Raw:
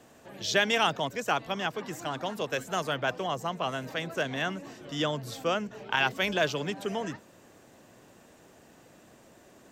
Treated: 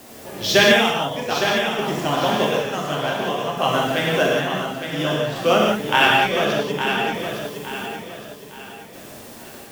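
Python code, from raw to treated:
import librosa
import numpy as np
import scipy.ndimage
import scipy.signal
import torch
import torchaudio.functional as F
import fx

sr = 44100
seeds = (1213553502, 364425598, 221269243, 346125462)

p1 = scipy.signal.medfilt(x, 5)
p2 = fx.peak_eq(p1, sr, hz=1500.0, db=-3.5, octaves=0.79)
p3 = fx.quant_dither(p2, sr, seeds[0], bits=8, dither='triangular')
p4 = p2 + (p3 * librosa.db_to_amplitude(-6.5))
p5 = fx.chopper(p4, sr, hz=0.56, depth_pct=60, duty_pct=40)
p6 = fx.echo_feedback(p5, sr, ms=862, feedback_pct=37, wet_db=-7.5)
p7 = fx.rev_gated(p6, sr, seeds[1], gate_ms=210, shape='flat', drr_db=-3.5)
y = p7 * librosa.db_to_amplitude(6.0)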